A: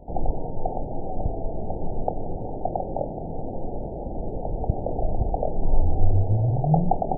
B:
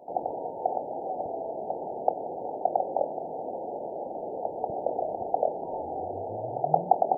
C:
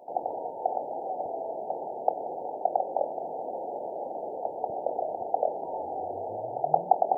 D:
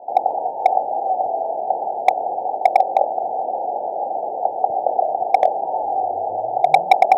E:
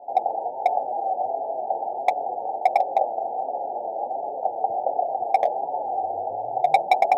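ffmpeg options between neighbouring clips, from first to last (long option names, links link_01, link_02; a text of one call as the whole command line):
ffmpeg -i in.wav -af "highpass=530,volume=3.5dB" out.wav
ffmpeg -i in.wav -af "lowshelf=frequency=370:gain=-11,areverse,acompressor=mode=upward:threshold=-32dB:ratio=2.5,areverse,volume=2dB" out.wav
ffmpeg -i in.wav -filter_complex "[0:a]lowpass=frequency=790:width_type=q:width=4.9,acrossover=split=120[link_01][link_02];[link_02]volume=4.5dB,asoftclip=hard,volume=-4.5dB[link_03];[link_01][link_03]amix=inputs=2:normalize=0,volume=1.5dB" out.wav
ffmpeg -i in.wav -af "flanger=delay=7:depth=2:regen=-18:speed=1.4:shape=sinusoidal,volume=-1.5dB" out.wav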